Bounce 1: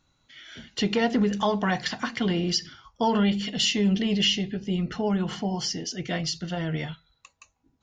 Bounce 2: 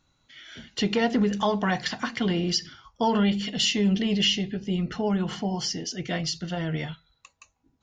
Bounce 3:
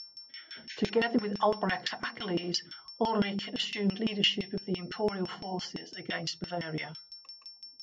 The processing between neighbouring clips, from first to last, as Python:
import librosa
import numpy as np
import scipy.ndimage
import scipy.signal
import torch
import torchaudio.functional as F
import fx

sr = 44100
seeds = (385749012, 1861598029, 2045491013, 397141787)

y1 = x
y2 = fx.spec_paint(y1, sr, seeds[0], shape='noise', start_s=0.69, length_s=0.21, low_hz=1500.0, high_hz=6900.0, level_db=-39.0)
y2 = y2 + 10.0 ** (-35.0 / 20.0) * np.sin(2.0 * np.pi * 5400.0 * np.arange(len(y2)) / sr)
y2 = fx.filter_lfo_bandpass(y2, sr, shape='saw_down', hz=5.9, low_hz=280.0, high_hz=3100.0, q=0.99)